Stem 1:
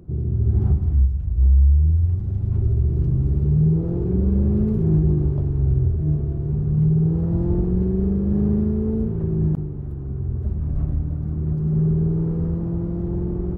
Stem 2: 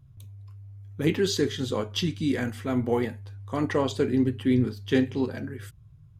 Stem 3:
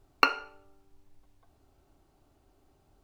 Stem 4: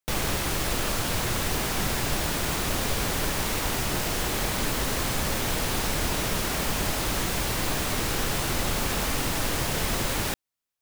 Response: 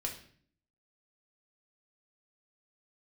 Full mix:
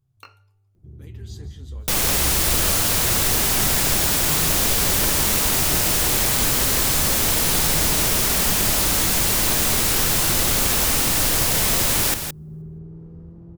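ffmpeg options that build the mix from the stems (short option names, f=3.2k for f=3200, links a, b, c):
-filter_complex "[0:a]adelay=750,volume=-17.5dB[a];[1:a]acompressor=threshold=-32dB:ratio=3,flanger=delay=6.1:depth=7.8:regen=47:speed=0.66:shape=triangular,volume=-12dB,asplit=3[b][c][d];[c]volume=-12.5dB[e];[2:a]flanger=delay=18:depth=5:speed=0.84,volume=-18.5dB[f];[3:a]adelay=1800,volume=2.5dB,asplit=2[g][h];[h]volume=-8dB[i];[d]apad=whole_len=134022[j];[f][j]sidechaincompress=threshold=-58dB:ratio=8:attack=16:release=390[k];[e][i]amix=inputs=2:normalize=0,aecho=0:1:167:1[l];[a][b][k][g][l]amix=inputs=5:normalize=0,highshelf=f=4.4k:g=11"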